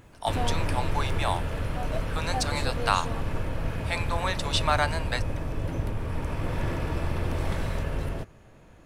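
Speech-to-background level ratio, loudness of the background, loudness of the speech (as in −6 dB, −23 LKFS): 1.0 dB, −31.5 LKFS, −30.5 LKFS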